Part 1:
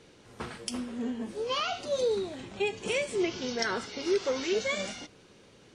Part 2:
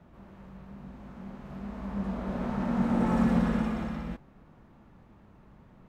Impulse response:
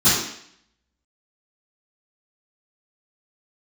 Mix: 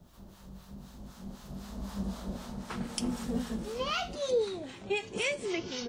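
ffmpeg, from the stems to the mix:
-filter_complex "[0:a]adelay=2300,volume=1.5dB[a];[1:a]lowshelf=f=66:g=9,aexciter=amount=9.5:drive=3.5:freq=3.4k,volume=-1dB,afade=t=out:st=1.95:d=0.71:silence=0.316228[b];[a][b]amix=inputs=2:normalize=0,acrossover=split=760[c][d];[c]aeval=exprs='val(0)*(1-0.7/2+0.7/2*cos(2*PI*3.9*n/s))':c=same[e];[d]aeval=exprs='val(0)*(1-0.7/2-0.7/2*cos(2*PI*3.9*n/s))':c=same[f];[e][f]amix=inputs=2:normalize=0"

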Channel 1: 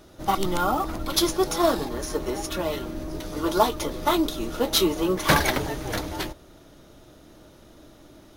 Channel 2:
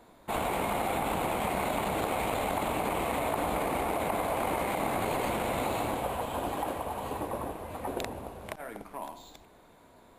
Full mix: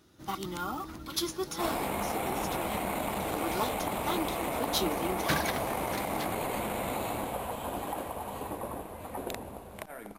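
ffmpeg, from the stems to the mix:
-filter_complex "[0:a]highpass=72,equalizer=f=610:w=1.9:g=-10,volume=-9dB[a];[1:a]equalizer=f=200:t=o:w=0.22:g=4,highshelf=f=11k:g=9,adelay=1300,volume=-3dB[b];[a][b]amix=inputs=2:normalize=0"

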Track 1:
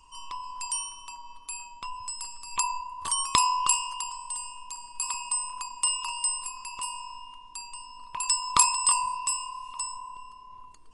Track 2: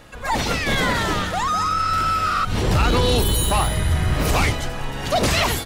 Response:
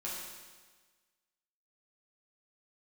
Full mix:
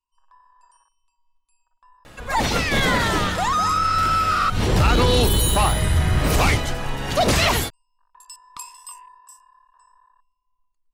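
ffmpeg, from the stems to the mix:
-filter_complex "[0:a]afwtdn=0.02,volume=-16dB[a];[1:a]adelay=2050,volume=1dB[b];[a][b]amix=inputs=2:normalize=0"

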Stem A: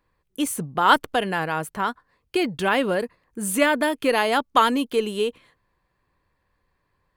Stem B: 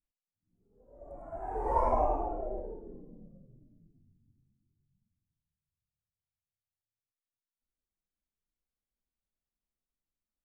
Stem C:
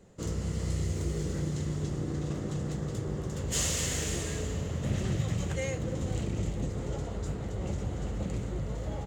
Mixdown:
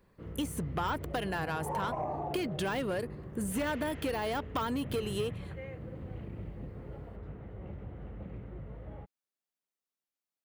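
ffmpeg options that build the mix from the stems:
-filter_complex "[0:a]deesser=0.7,highshelf=f=4.9k:g=4.5,volume=0dB[a];[1:a]highpass=320,volume=0dB[b];[2:a]lowpass=f=2.5k:w=0.5412,lowpass=f=2.5k:w=1.3066,volume=-10dB[c];[a][b]amix=inputs=2:normalize=0,asoftclip=type=tanh:threshold=-18dB,acompressor=threshold=-32dB:ratio=5,volume=0dB[d];[c][d]amix=inputs=2:normalize=0"

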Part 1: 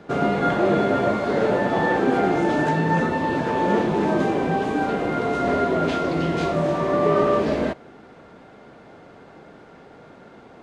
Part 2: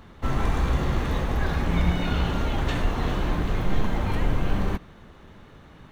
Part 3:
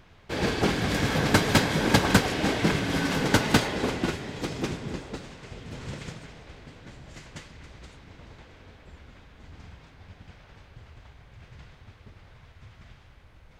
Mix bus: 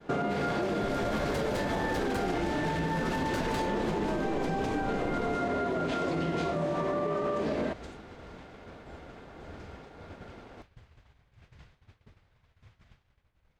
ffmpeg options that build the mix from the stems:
-filter_complex "[0:a]volume=-0.5dB[a];[1:a]alimiter=limit=-22.5dB:level=0:latency=1:release=126,adelay=600,volume=-4.5dB[b];[2:a]asoftclip=type=tanh:threshold=-20.5dB,volume=-1dB[c];[a][c]amix=inputs=2:normalize=0,agate=range=-33dB:threshold=-41dB:ratio=3:detection=peak,alimiter=limit=-16dB:level=0:latency=1,volume=0dB[d];[b][d]amix=inputs=2:normalize=0,acompressor=threshold=-27dB:ratio=6"

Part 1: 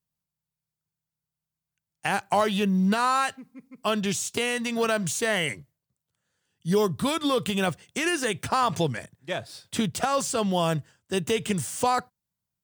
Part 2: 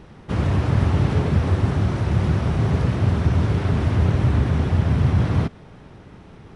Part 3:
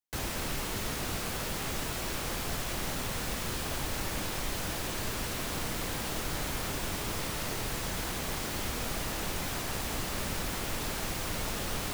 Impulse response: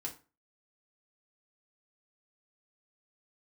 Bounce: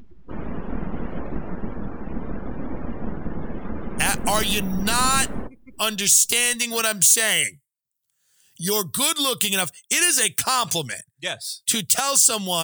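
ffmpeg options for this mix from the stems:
-filter_complex "[0:a]crystalizer=i=9.5:c=0,adelay=1950,volume=-4.5dB[a];[1:a]flanger=delay=6.9:depth=2.3:regen=79:speed=1.5:shape=triangular,aeval=exprs='abs(val(0))':c=same,volume=-2.5dB[b];[a][b]amix=inputs=2:normalize=0,afftdn=nr=25:nf=-42,acompressor=mode=upward:threshold=-31dB:ratio=2.5"

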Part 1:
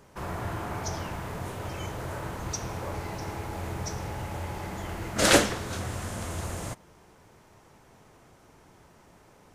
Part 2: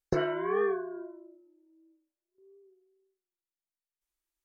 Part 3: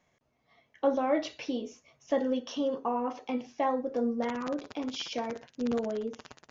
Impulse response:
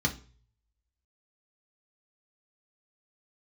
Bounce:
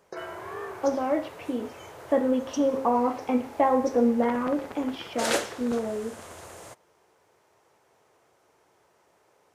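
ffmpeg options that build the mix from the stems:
-filter_complex "[0:a]highpass=83,lowshelf=f=310:t=q:w=1.5:g=-9,volume=-7dB[a];[1:a]highpass=560,volume=-5dB[b];[2:a]lowpass=2k,bandreject=f=133.1:t=h:w=4,bandreject=f=266.2:t=h:w=4,bandreject=f=399.3:t=h:w=4,bandreject=f=532.4:t=h:w=4,bandreject=f=665.5:t=h:w=4,bandreject=f=798.6:t=h:w=4,bandreject=f=931.7:t=h:w=4,bandreject=f=1.0648k:t=h:w=4,bandreject=f=1.1979k:t=h:w=4,bandreject=f=1.331k:t=h:w=4,bandreject=f=1.4641k:t=h:w=4,bandreject=f=1.5972k:t=h:w=4,bandreject=f=1.7303k:t=h:w=4,bandreject=f=1.8634k:t=h:w=4,bandreject=f=1.9965k:t=h:w=4,bandreject=f=2.1296k:t=h:w=4,bandreject=f=2.2627k:t=h:w=4,bandreject=f=2.3958k:t=h:w=4,bandreject=f=2.5289k:t=h:w=4,bandreject=f=2.662k:t=h:w=4,bandreject=f=2.7951k:t=h:w=4,bandreject=f=2.9282k:t=h:w=4,bandreject=f=3.0613k:t=h:w=4,bandreject=f=3.1944k:t=h:w=4,bandreject=f=3.3275k:t=h:w=4,bandreject=f=3.4606k:t=h:w=4,bandreject=f=3.5937k:t=h:w=4,bandreject=f=3.7268k:t=h:w=4,bandreject=f=3.8599k:t=h:w=4,bandreject=f=3.993k:t=h:w=4,bandreject=f=4.1261k:t=h:w=4,dynaudnorm=f=400:g=11:m=7.5dB,volume=1dB[c];[a][b][c]amix=inputs=3:normalize=0"

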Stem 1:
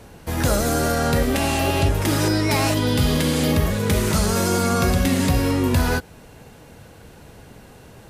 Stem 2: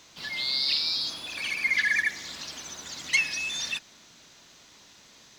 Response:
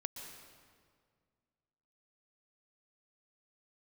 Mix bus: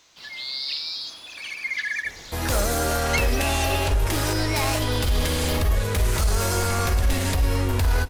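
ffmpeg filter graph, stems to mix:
-filter_complex "[0:a]aeval=exprs='0.2*(abs(mod(val(0)/0.2+3,4)-2)-1)':c=same,asubboost=boost=7.5:cutoff=64,alimiter=limit=-11.5dB:level=0:latency=1:release=24,adelay=2050,volume=-2.5dB,asplit=2[a][b];[b]volume=-9.5dB[c];[1:a]volume=-3dB[d];[2:a]atrim=start_sample=2205[e];[c][e]afir=irnorm=-1:irlink=0[f];[a][d][f]amix=inputs=3:normalize=0,equalizer=f=180:w=0.78:g=-7"

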